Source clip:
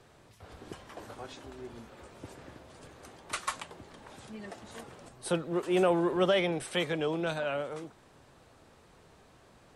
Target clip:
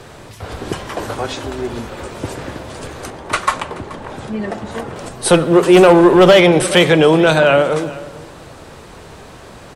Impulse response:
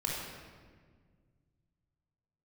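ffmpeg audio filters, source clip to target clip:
-filter_complex "[0:a]asettb=1/sr,asplit=3[s0][s1][s2];[s0]atrim=end=3.104[s3];[s1]atrim=start=3.1:end=4.96,asetpts=PTS-STARTPTS,afade=t=in:d=0.004:c=qsin,afade=t=out:st=1.856:d=0.004:c=qsin,highshelf=f=2600:g=-11.5[s4];[s2]atrim=start=4.956[s5];[s3][s4]acrossfade=d=0.004:c1=hsin:c2=qsin[s6];[s6][s5]acrossfade=d=0.004:c1=qsin:c2=hsin,asplit=2[s7][s8];[s8]aecho=0:1:429:0.0944[s9];[s7][s9]amix=inputs=2:normalize=0,asoftclip=type=hard:threshold=0.075,asplit=2[s10][s11];[1:a]atrim=start_sample=2205,asetrate=48510,aresample=44100[s12];[s11][s12]afir=irnorm=-1:irlink=0,volume=0.126[s13];[s10][s13]amix=inputs=2:normalize=0,alimiter=level_in=11.9:limit=0.891:release=50:level=0:latency=1,volume=0.891"

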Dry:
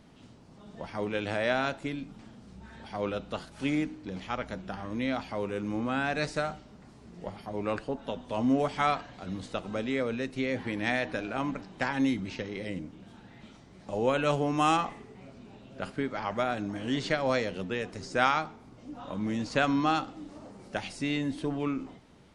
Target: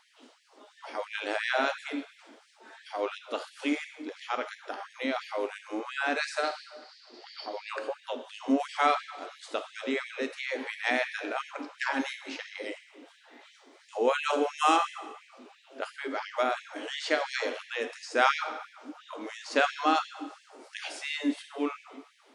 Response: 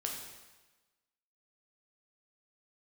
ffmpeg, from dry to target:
-filter_complex "[0:a]asettb=1/sr,asplit=3[s0][s1][s2];[s0]atrim=end=6.434[s3];[s1]atrim=start=6.43:end=7.69,asetpts=PTS-STARTPTS,afade=t=in:d=0.004:c=qsin,afade=t=out:st=1.256:d=0.004:c=qsin,lowpass=f=4600:t=q:w=7.5[s4];[s2]atrim=start=7.686[s5];[s3][s4]acrossfade=d=0.004:c1=hsin:c2=qsin[s6];[s6][s5]acrossfade=d=0.004:c1=qsin:c2=hsin,asplit=2[s7][s8];[1:a]atrim=start_sample=2205[s9];[s8][s9]afir=irnorm=-1:irlink=0,volume=0.794[s10];[s7][s10]amix=inputs=2:normalize=0,afftfilt=real='re*gte(b*sr/1024,220*pow(1700/220,0.5+0.5*sin(2*PI*2.9*pts/sr)))':imag='im*gte(b*sr/1024,220*pow(1700/220,0.5+0.5*sin(2*PI*2.9*pts/sr)))':win_size=1024:overlap=0.75,volume=0.75"

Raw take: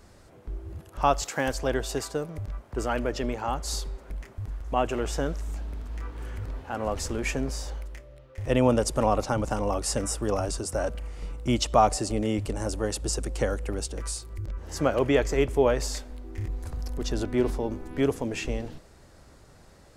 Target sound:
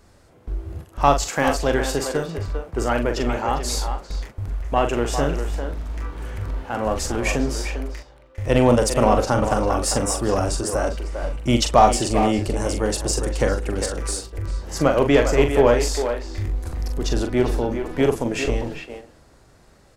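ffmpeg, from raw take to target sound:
-filter_complex "[0:a]aeval=exprs='0.376*(cos(1*acos(clip(val(0)/0.376,-1,1)))-cos(1*PI/2))+0.0188*(cos(6*acos(clip(val(0)/0.376,-1,1)))-cos(6*PI/2))+0.00422*(cos(8*acos(clip(val(0)/0.376,-1,1)))-cos(8*PI/2))':c=same,asplit=2[s0][s1];[s1]adelay=42,volume=0.447[s2];[s0][s2]amix=inputs=2:normalize=0,asplit=2[s3][s4];[s4]adelay=400,highpass=300,lowpass=3400,asoftclip=type=hard:threshold=0.168,volume=0.447[s5];[s3][s5]amix=inputs=2:normalize=0,agate=range=0.501:threshold=0.01:ratio=16:detection=peak,volume=1.88"

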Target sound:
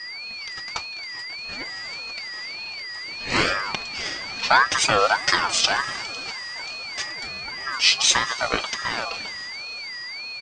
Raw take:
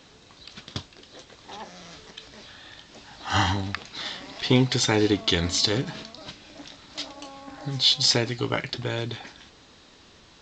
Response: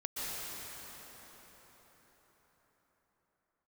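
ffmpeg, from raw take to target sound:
-filter_complex "[0:a]aeval=exprs='val(0)+0.0141*sin(2*PI*3400*n/s)':c=same,aecho=1:1:4.4:0.5,asplit=2[s0][s1];[1:a]atrim=start_sample=2205,asetrate=27783,aresample=44100,highshelf=f=4700:g=8.5[s2];[s1][s2]afir=irnorm=-1:irlink=0,volume=0.0473[s3];[s0][s3]amix=inputs=2:normalize=0,aeval=exprs='val(0)*sin(2*PI*1200*n/s+1200*0.25/1.7*sin(2*PI*1.7*n/s))':c=same,volume=1.58"

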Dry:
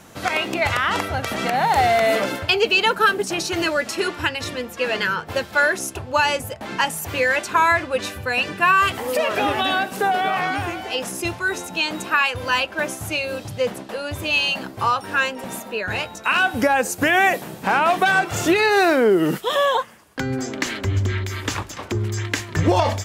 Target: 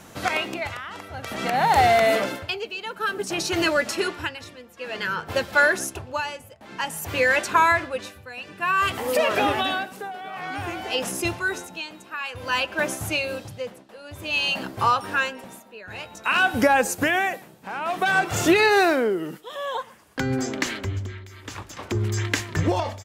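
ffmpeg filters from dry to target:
-filter_complex "[0:a]tremolo=f=0.54:d=0.84,asplit=2[s0][s1];[s1]adelay=120,highpass=300,lowpass=3400,asoftclip=type=hard:threshold=0.168,volume=0.0794[s2];[s0][s2]amix=inputs=2:normalize=0"

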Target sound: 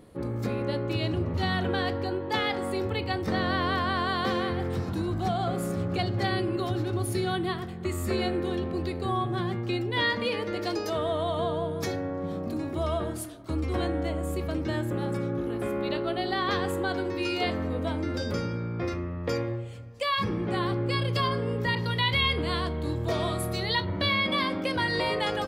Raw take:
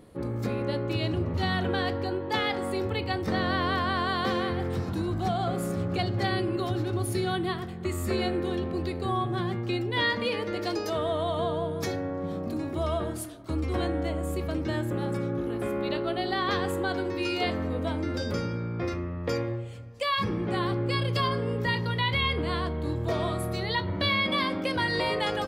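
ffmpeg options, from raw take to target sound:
-filter_complex "[0:a]asettb=1/sr,asplit=3[s0][s1][s2];[s0]atrim=end=21.754[s3];[s1]atrim=start=21.75:end=23.85,asetpts=PTS-STARTPTS,afade=t=in:d=0.004:c=qsin,afade=t=out:st=2.096:d=0.004:c=qsin,adynamicequalizer=threshold=0.00794:dfrequency=2600:dqfactor=0.7:tfrequency=2600:tqfactor=0.7:attack=5:release=100:ratio=0.375:range=2.5:mode=boostabove:tftype=highshelf[s4];[s2]atrim=start=23.846[s5];[s3][s4]acrossfade=d=0.004:c1=hsin:c2=qsin[s6];[s6][s5]acrossfade=d=0.004:c1=qsin:c2=hsin"

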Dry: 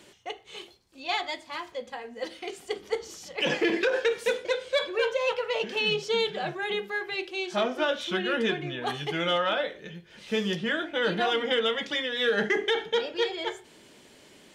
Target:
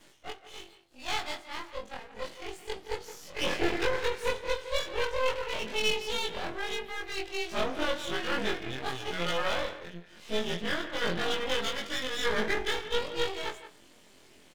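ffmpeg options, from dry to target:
-filter_complex "[0:a]afftfilt=real='re':imag='-im':win_size=2048:overlap=0.75,aeval=exprs='max(val(0),0)':c=same,asplit=2[s0][s1];[s1]adelay=170,highpass=300,lowpass=3400,asoftclip=type=hard:threshold=0.0447,volume=0.251[s2];[s0][s2]amix=inputs=2:normalize=0,volume=1.68"

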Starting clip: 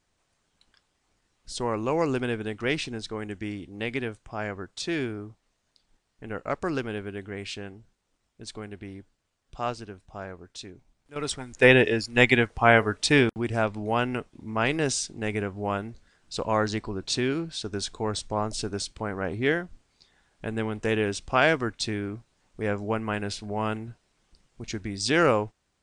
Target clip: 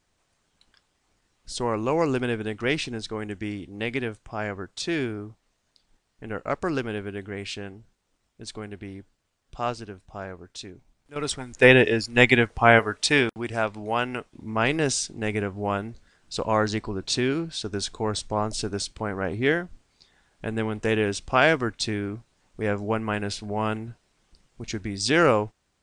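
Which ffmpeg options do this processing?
-filter_complex "[0:a]asettb=1/sr,asplit=3[s0][s1][s2];[s0]atrim=end=12.794[s3];[s1]atrim=start=12.79:end=14.32,asetpts=PTS-STARTPTS,afade=t=in:d=0.004:c=qsin,afade=t=out:st=1.526:d=0.004:c=qsin,lowshelf=f=390:g=-7.5[s4];[s2]atrim=start=14.316[s5];[s3][s4]acrossfade=d=0.004:c1=hsin:c2=qsin[s6];[s6][s5]acrossfade=d=0.004:c1=qsin:c2=hsin,volume=1.26"

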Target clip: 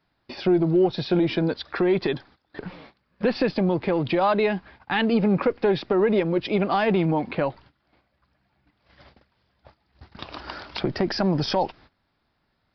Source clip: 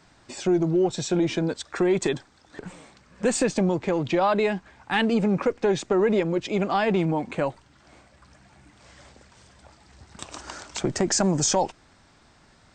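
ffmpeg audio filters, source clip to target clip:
-af "aresample=11025,aresample=44100,agate=range=0.126:threshold=0.00355:ratio=16:detection=peak,alimiter=limit=0.178:level=0:latency=1:release=293,volume=1.41"

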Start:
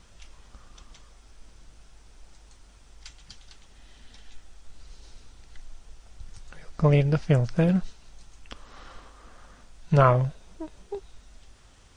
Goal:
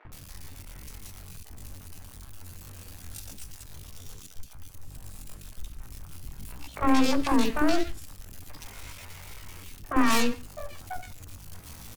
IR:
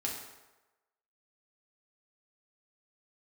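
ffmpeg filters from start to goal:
-filter_complex "[0:a]aeval=exprs='val(0)+0.5*0.02*sgn(val(0))':c=same,highshelf=f=6200:g=4.5,asoftclip=type=tanh:threshold=0.398,aeval=exprs='0.355*(cos(1*acos(clip(val(0)/0.355,-1,1)))-cos(1*PI/2))+0.00355*(cos(5*acos(clip(val(0)/0.355,-1,1)))-cos(5*PI/2))+0.141*(cos(8*acos(clip(val(0)/0.355,-1,1)))-cos(8*PI/2))':c=same,asetrate=80880,aresample=44100,atempo=0.545254,acrossover=split=470|2000[s0][s1][s2];[s0]adelay=50[s3];[s2]adelay=120[s4];[s3][s1][s4]amix=inputs=3:normalize=0,asplit=2[s5][s6];[1:a]atrim=start_sample=2205,atrim=end_sample=6615[s7];[s6][s7]afir=irnorm=-1:irlink=0,volume=0.224[s8];[s5][s8]amix=inputs=2:normalize=0,volume=0.447"

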